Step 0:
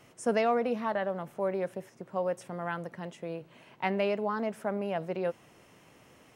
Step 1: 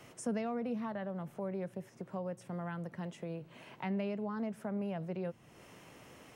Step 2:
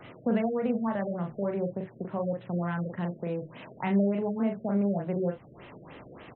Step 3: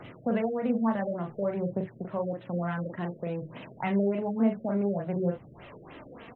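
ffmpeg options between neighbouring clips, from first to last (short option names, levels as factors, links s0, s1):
-filter_complex "[0:a]acrossover=split=220[s0][s1];[s1]acompressor=threshold=0.00355:ratio=2.5[s2];[s0][s2]amix=inputs=2:normalize=0,volume=1.33"
-filter_complex "[0:a]asplit=2[s0][s1];[s1]aecho=0:1:40|66:0.596|0.188[s2];[s0][s2]amix=inputs=2:normalize=0,afftfilt=real='re*lt(b*sr/1024,640*pow(4200/640,0.5+0.5*sin(2*PI*3.4*pts/sr)))':imag='im*lt(b*sr/1024,640*pow(4200/640,0.5+0.5*sin(2*PI*3.4*pts/sr)))':win_size=1024:overlap=0.75,volume=2.37"
-af "aphaser=in_gain=1:out_gain=1:delay=4.5:decay=0.37:speed=0.56:type=triangular"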